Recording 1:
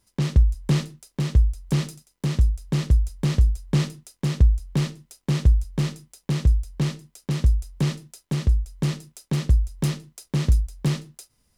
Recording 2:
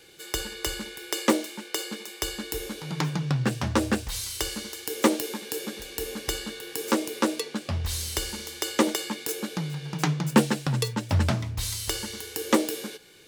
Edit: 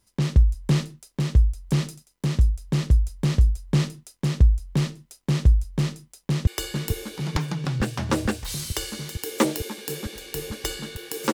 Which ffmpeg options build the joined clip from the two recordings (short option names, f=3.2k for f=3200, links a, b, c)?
-filter_complex "[0:a]apad=whole_dur=11.33,atrim=end=11.33,atrim=end=6.472[a];[1:a]atrim=start=2.108:end=6.97[b];[a][b]acrossfade=d=0.004:c1=hsin:c2=hsin,asplit=2[c][d];[d]afade=t=in:st=6.13:d=0.01,afade=t=out:st=6.47:d=0.01,aecho=0:1:450|900|1350|1800|2250|2700|3150|3600|4050|4500|4950|5400:0.530884|0.451252|0.383564|0.326029|0.277125|0.235556|0.200223|0.170189|0.144661|0.122962|0.104518|0.0888399[e];[c][e]amix=inputs=2:normalize=0"